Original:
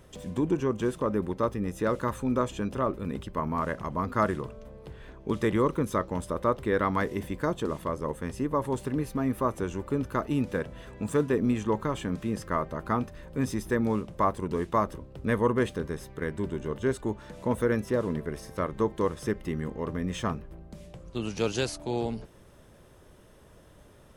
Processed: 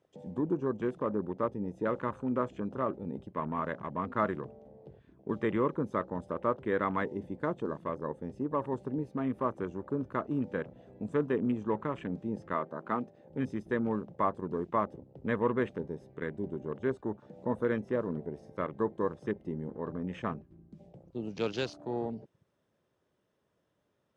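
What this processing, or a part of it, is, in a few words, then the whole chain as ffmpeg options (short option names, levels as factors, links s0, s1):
over-cleaned archive recording: -filter_complex "[0:a]asettb=1/sr,asplit=3[s0][s1][s2];[s0]atrim=end=12.534[s3];[s1]atrim=start=12.53:end=13.3,asetpts=PTS-STARTPTS,afade=t=in:d=0.004:c=qsin,afade=t=out:st=0.766:d=0.004:c=qsin,highpass=170[s4];[s2]atrim=start=13.296[s5];[s3][s4]acrossfade=d=0.004:c1=hsin:c2=qsin[s6];[s6][s5]acrossfade=d=0.004:c1=qsin:c2=hsin,highpass=130,lowpass=6300,afwtdn=0.01,volume=0.631"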